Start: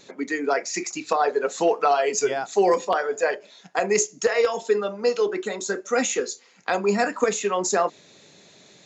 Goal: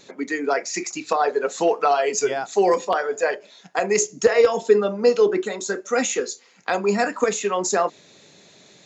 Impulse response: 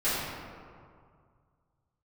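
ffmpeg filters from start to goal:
-filter_complex "[0:a]asettb=1/sr,asplit=3[link_01][link_02][link_03];[link_01]atrim=end=4.024[link_04];[link_02]atrim=start=4.02:end=5.45,asetpts=PTS-STARTPTS,afade=type=in:duration=0.004:curve=qsin,afade=type=out:start_time=1.426:duration=0.004:curve=qsin,lowshelf=frequency=460:gain=8.5[link_05];[link_03]atrim=start=5.446[link_06];[link_04][link_05]acrossfade=duration=0.004:curve1=hsin:curve2=qsin[link_07];[link_07][link_06]acrossfade=duration=0.004:curve1=qsin:curve2=hsin,volume=1dB"

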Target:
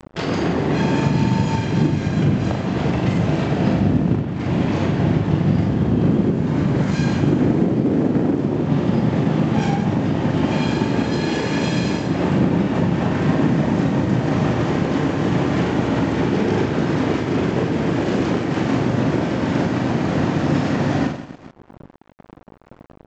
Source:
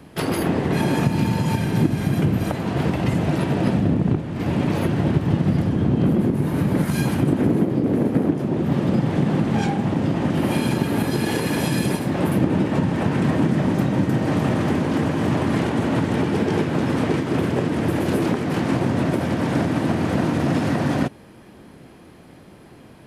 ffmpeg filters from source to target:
ffmpeg -i in.wav -af "anlmdn=0.158,aecho=1:1:40|96|174.4|284.2|437.8:0.631|0.398|0.251|0.158|0.1,aresample=16000,aeval=exprs='sgn(val(0))*max(abs(val(0))-0.00794,0)':channel_layout=same,aresample=44100,acompressor=mode=upward:threshold=-27dB:ratio=2.5" out.wav

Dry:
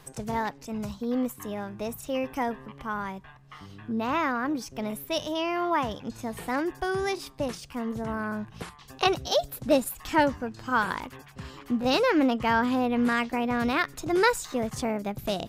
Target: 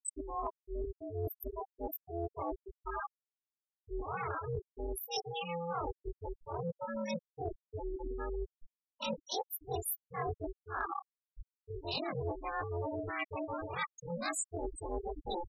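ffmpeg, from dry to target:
ffmpeg -i in.wav -af "afftfilt=real='re':imag='-im':win_size=2048:overlap=0.75,bandreject=frequency=1700:width=6.5,aeval=exprs='val(0)*sin(2*PI*170*n/s)':channel_layout=same,aemphasis=mode=production:type=50fm,afftfilt=real='re*gte(hypot(re,im),0.0447)':imag='im*gte(hypot(re,im),0.0447)':win_size=1024:overlap=0.75,lowpass=7200,highshelf=frequency=3500:gain=12,areverse,acompressor=threshold=-42dB:ratio=8,areverse,volume=7.5dB" out.wav

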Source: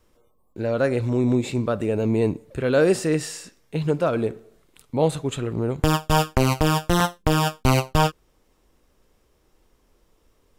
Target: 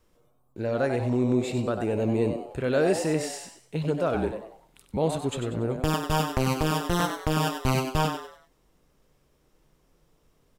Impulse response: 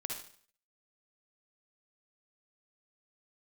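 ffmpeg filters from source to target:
-filter_complex "[0:a]asplit=2[link_01][link_02];[link_02]alimiter=limit=-15.5dB:level=0:latency=1,volume=-2.5dB[link_03];[link_01][link_03]amix=inputs=2:normalize=0,asettb=1/sr,asplit=3[link_04][link_05][link_06];[link_04]atrim=end=4.144[link_07];[link_05]atrim=start=4.14:end=4.97,asetpts=PTS-STARTPTS,afade=type=in:duration=0.004:curve=qsin,afade=type=out:start_time=0.826:duration=0.004:curve=qsin,afreqshift=-35[link_08];[link_06]atrim=start=4.966[link_09];[link_07][link_08]acrossfade=duration=0.004:curve1=hsin:curve2=qsin[link_10];[link_10][link_09]acrossfade=duration=0.004:curve1=qsin:curve2=hsin,asplit=5[link_11][link_12][link_13][link_14][link_15];[link_12]adelay=95,afreqshift=130,volume=-8dB[link_16];[link_13]adelay=190,afreqshift=260,volume=-17.1dB[link_17];[link_14]adelay=285,afreqshift=390,volume=-26.2dB[link_18];[link_15]adelay=380,afreqshift=520,volume=-35.4dB[link_19];[link_11][link_16][link_17][link_18][link_19]amix=inputs=5:normalize=0,volume=-8.5dB"

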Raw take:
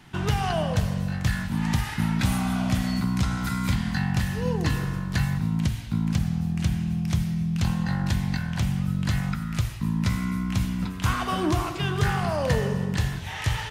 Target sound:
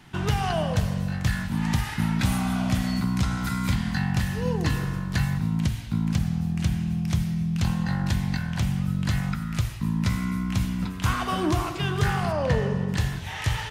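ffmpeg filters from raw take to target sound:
ffmpeg -i in.wav -filter_complex "[0:a]asplit=3[link_01][link_02][link_03];[link_01]afade=type=out:start_time=12.31:duration=0.02[link_04];[link_02]aemphasis=mode=reproduction:type=50fm,afade=type=in:start_time=12.31:duration=0.02,afade=type=out:start_time=12.87:duration=0.02[link_05];[link_03]afade=type=in:start_time=12.87:duration=0.02[link_06];[link_04][link_05][link_06]amix=inputs=3:normalize=0" out.wav

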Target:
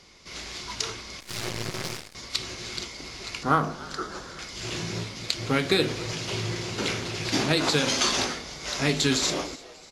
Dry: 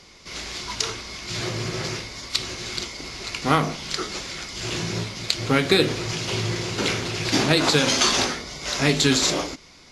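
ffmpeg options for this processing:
ffmpeg -i in.wav -filter_complex "[0:a]asettb=1/sr,asplit=3[link_01][link_02][link_03];[link_01]atrim=end=3.434[link_04];[link_02]atrim=start=3.43:end=4.39,asetpts=PTS-STARTPTS,afade=type=in:duration=0.004:curve=qsin,afade=type=out:start_time=0.956:duration=0.004:curve=qsin,highshelf=frequency=1800:width_type=q:width=3:gain=-6[link_05];[link_03]atrim=start=4.386[link_06];[link_04][link_05]acrossfade=duration=0.004:curve1=hsin:curve2=qsin[link_07];[link_07][link_06]acrossfade=duration=0.004:curve1=qsin:curve2=hsin,asplit=5[link_08][link_09][link_10][link_11][link_12];[link_09]adelay=296,afreqshift=110,volume=-20.5dB[link_13];[link_10]adelay=592,afreqshift=220,volume=-26.2dB[link_14];[link_11]adelay=888,afreqshift=330,volume=-31.9dB[link_15];[link_12]adelay=1184,afreqshift=440,volume=-37.5dB[link_16];[link_08][link_13][link_14][link_15][link_16]amix=inputs=5:normalize=0,asettb=1/sr,asplit=3[link_17][link_18][link_19];[link_17]atrim=end=1.204[link_20];[link_18]atrim=start=1.2:end=2.15,asetpts=PTS-STARTPTS,afade=type=in:duration=0.004:curve=qsin,afade=type=out:start_time=0.946:duration=0.004:curve=qsin,aeval=exprs='0.158*(cos(1*acos(clip(val(0)/0.158,-1,1)))-cos(1*PI/2))+0.0355*(cos(4*acos(clip(val(0)/0.158,-1,1)))-cos(4*PI/2))+0.0224*(cos(7*acos(clip(val(0)/0.158,-1,1)))-cos(7*PI/2))':channel_layout=same[link_21];[link_19]atrim=start=2.146[link_22];[link_20][link_21]acrossfade=duration=0.004:curve1=hsin:curve2=qsin[link_23];[link_23][link_22]acrossfade=duration=0.004:curve1=qsin:curve2=hsin,volume=-4.5dB" out.wav

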